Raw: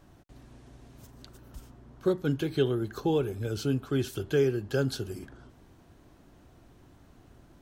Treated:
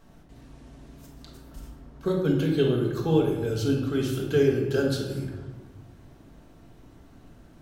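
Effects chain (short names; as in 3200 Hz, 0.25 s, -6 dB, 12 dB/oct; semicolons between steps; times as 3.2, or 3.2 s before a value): shoebox room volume 710 m³, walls mixed, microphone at 1.6 m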